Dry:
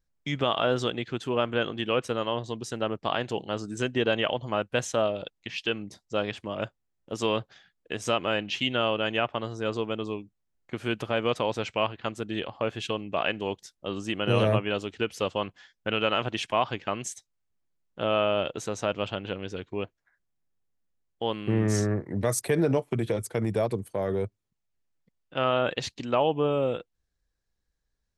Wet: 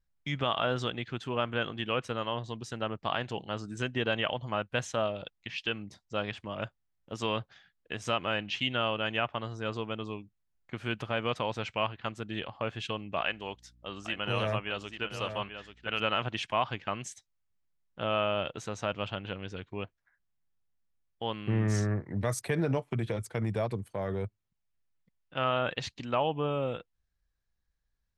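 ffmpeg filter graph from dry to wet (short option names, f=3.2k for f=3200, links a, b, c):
-filter_complex "[0:a]asettb=1/sr,asplit=3[a][b][c];[a]atrim=end=13.214[d];[b]atrim=start=13.21:end=16,asetpts=PTS-STARTPTS,afade=t=in:d=0.004:c=qsin,afade=t=out:st=2.786:d=0.004:c=qsin,lowshelf=f=410:g=-7.5,aeval=exprs='val(0)+0.001*(sin(2*PI*60*n/s)+sin(2*PI*2*60*n/s)/2+sin(2*PI*3*60*n/s)/3+sin(2*PI*4*60*n/s)/4+sin(2*PI*5*60*n/s)/5)':c=same,aecho=1:1:838:0.355,atrim=end_sample=123039[e];[c]atrim=start=15.996[f];[d][e]acrossfade=d=0.004:c1=hsin:c2=qsin[g];[g][f]acrossfade=d=0.004:c1=qsin:c2=hsin,lowpass=f=3.2k:p=1,equalizer=f=390:w=0.72:g=-7.5"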